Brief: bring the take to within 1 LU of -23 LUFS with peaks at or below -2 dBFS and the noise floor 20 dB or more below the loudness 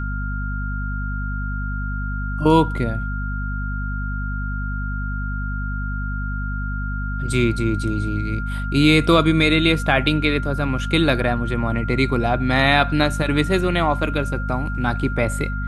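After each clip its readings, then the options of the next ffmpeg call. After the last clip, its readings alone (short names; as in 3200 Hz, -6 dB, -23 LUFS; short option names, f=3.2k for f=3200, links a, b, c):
hum 50 Hz; harmonics up to 250 Hz; hum level -23 dBFS; steady tone 1400 Hz; tone level -30 dBFS; loudness -21.0 LUFS; peak -1.0 dBFS; loudness target -23.0 LUFS
-> -af "bandreject=f=50:t=h:w=6,bandreject=f=100:t=h:w=6,bandreject=f=150:t=h:w=6,bandreject=f=200:t=h:w=6,bandreject=f=250:t=h:w=6"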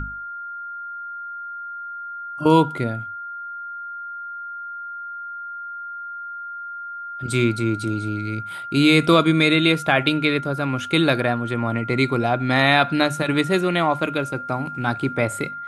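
hum none; steady tone 1400 Hz; tone level -30 dBFS
-> -af "bandreject=f=1.4k:w=30"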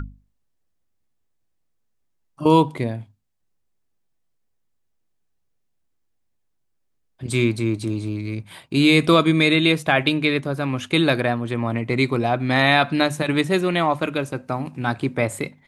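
steady tone none; loudness -20.5 LUFS; peak -2.5 dBFS; loudness target -23.0 LUFS
-> -af "volume=-2.5dB"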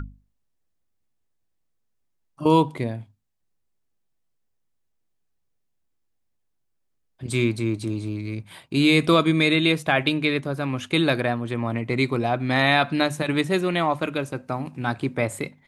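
loudness -23.0 LUFS; peak -5.0 dBFS; noise floor -72 dBFS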